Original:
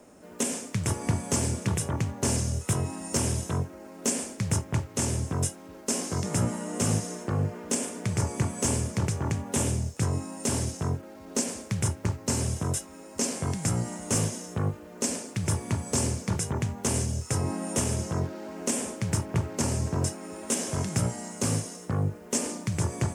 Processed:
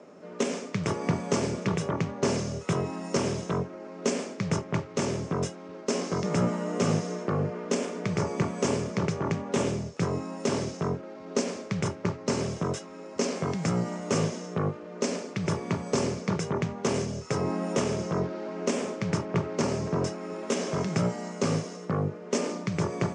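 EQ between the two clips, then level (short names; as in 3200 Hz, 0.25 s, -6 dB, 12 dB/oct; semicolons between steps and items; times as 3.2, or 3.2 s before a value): speaker cabinet 160–5800 Hz, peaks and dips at 170 Hz +8 dB, 410 Hz +7 dB, 590 Hz +5 dB, 1200 Hz +6 dB, 2200 Hz +3 dB; 0.0 dB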